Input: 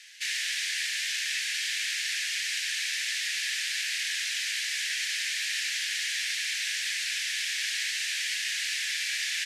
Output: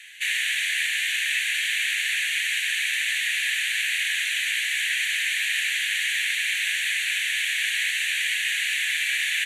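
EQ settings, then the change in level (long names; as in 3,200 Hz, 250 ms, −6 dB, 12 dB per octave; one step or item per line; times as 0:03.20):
phaser with its sweep stopped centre 2,200 Hz, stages 4
+8.5 dB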